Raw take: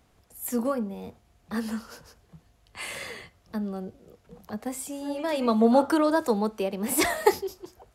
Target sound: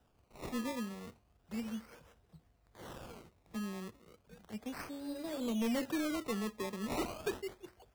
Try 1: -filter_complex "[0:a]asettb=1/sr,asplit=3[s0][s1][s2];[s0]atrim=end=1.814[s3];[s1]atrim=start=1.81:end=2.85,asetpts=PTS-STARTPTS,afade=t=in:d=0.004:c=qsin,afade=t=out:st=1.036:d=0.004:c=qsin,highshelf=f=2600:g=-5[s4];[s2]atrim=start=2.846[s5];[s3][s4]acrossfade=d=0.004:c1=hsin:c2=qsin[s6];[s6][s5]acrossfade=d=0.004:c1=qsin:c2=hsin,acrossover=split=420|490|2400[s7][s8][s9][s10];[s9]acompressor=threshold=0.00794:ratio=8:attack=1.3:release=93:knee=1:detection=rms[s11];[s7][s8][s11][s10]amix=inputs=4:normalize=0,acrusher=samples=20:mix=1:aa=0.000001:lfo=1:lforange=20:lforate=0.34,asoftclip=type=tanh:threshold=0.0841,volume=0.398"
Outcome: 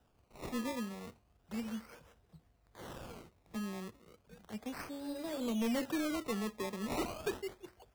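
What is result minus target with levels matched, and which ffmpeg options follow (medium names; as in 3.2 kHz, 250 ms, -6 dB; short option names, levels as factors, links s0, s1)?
compression: peak gain reduction -6 dB
-filter_complex "[0:a]asettb=1/sr,asplit=3[s0][s1][s2];[s0]atrim=end=1.814[s3];[s1]atrim=start=1.81:end=2.85,asetpts=PTS-STARTPTS,afade=t=in:d=0.004:c=qsin,afade=t=out:st=1.036:d=0.004:c=qsin,highshelf=f=2600:g=-5[s4];[s2]atrim=start=2.846[s5];[s3][s4]acrossfade=d=0.004:c1=hsin:c2=qsin[s6];[s6][s5]acrossfade=d=0.004:c1=qsin:c2=hsin,acrossover=split=420|490|2400[s7][s8][s9][s10];[s9]acompressor=threshold=0.00355:ratio=8:attack=1.3:release=93:knee=1:detection=rms[s11];[s7][s8][s11][s10]amix=inputs=4:normalize=0,acrusher=samples=20:mix=1:aa=0.000001:lfo=1:lforange=20:lforate=0.34,asoftclip=type=tanh:threshold=0.0841,volume=0.398"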